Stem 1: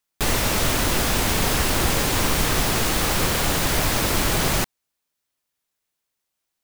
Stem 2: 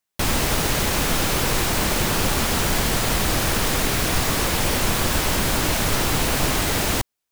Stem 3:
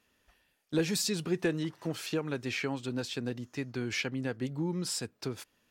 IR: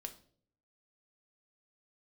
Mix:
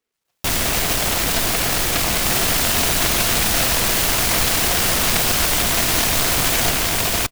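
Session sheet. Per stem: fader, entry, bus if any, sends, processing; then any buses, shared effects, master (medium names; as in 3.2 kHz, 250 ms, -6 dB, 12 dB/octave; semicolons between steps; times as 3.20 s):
+2.0 dB, 2.05 s, no send, high-pass 1 kHz
-3.0 dB, 0.25 s, send -18 dB, treble shelf 4.4 kHz +9.5 dB; small resonant body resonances 690/3600 Hz, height 15 dB, ringing for 45 ms
-13.0 dB, 0.00 s, no send, comb 4.1 ms, depth 58%; step-sequenced high-pass 8.5 Hz 390–4200 Hz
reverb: on, RT60 0.55 s, pre-delay 4 ms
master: delay time shaken by noise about 1.9 kHz, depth 0.3 ms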